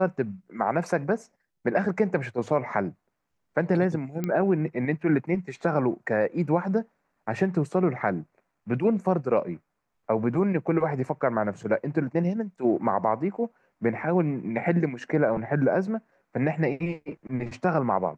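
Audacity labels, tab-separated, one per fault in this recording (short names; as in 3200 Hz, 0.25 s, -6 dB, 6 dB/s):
4.240000	4.240000	pop -16 dBFS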